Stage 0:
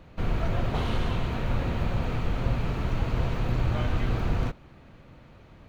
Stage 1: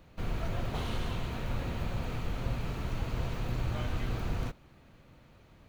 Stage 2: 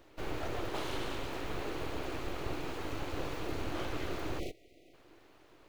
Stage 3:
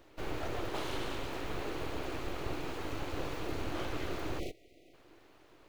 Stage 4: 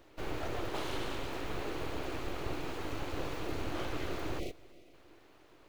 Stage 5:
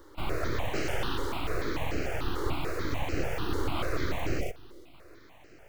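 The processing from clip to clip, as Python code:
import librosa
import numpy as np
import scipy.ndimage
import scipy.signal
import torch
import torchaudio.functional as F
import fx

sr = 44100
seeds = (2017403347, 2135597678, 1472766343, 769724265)

y1 = fx.high_shelf(x, sr, hz=5500.0, db=11.5)
y1 = F.gain(torch.from_numpy(y1), -7.0).numpy()
y2 = np.abs(y1)
y2 = fx.spec_erase(y2, sr, start_s=4.39, length_s=0.55, low_hz=760.0, high_hz=1900.0)
y2 = fx.low_shelf_res(y2, sr, hz=260.0, db=-6.0, q=3.0)
y2 = F.gain(torch.from_numpy(y2), 1.0).numpy()
y3 = y2
y4 = fx.echo_feedback(y3, sr, ms=329, feedback_pct=37, wet_db=-24.0)
y5 = fx.phaser_held(y4, sr, hz=6.8, low_hz=680.0, high_hz=3500.0)
y5 = F.gain(torch.from_numpy(y5), 9.0).numpy()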